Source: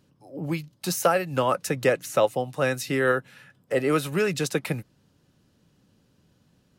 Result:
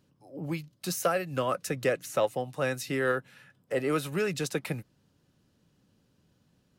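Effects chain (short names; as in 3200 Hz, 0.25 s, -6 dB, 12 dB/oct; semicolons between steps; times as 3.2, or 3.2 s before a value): 0.7–2.07 notch 880 Hz, Q 5.7; in parallel at -10 dB: soft clip -19 dBFS, distortion -13 dB; on the sum: gain -7 dB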